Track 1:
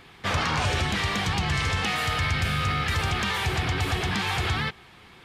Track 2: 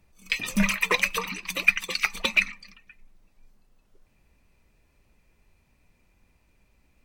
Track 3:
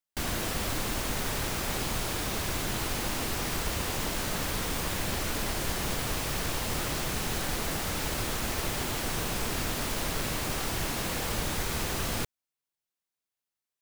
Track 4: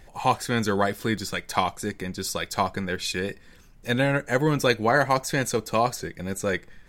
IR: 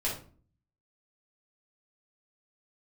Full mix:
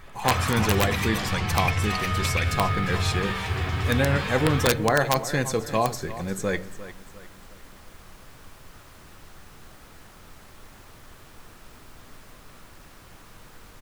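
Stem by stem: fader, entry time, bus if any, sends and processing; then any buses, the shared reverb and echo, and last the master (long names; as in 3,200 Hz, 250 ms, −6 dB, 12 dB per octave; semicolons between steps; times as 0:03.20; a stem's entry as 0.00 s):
+1.0 dB, 0.00 s, bus A, send −13 dB, no echo send, no processing
−12.0 dB, 0.00 s, no bus, no send, no echo send, high-shelf EQ 4,200 Hz +11.5 dB; multiband upward and downward compressor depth 40%
−16.0 dB, 1.95 s, bus A, send −18.5 dB, echo send −5.5 dB, no processing
−2.5 dB, 0.00 s, no bus, send −18 dB, echo send −14 dB, no processing
bus A: 0.0 dB, resonant band-pass 1,300 Hz, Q 1.8; downward compressor 2.5 to 1, threshold −38 dBFS, peak gain reduction 8.5 dB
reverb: on, RT60 0.40 s, pre-delay 5 ms
echo: repeating echo 351 ms, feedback 40%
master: low-shelf EQ 290 Hz +3.5 dB; wrap-around overflow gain 10.5 dB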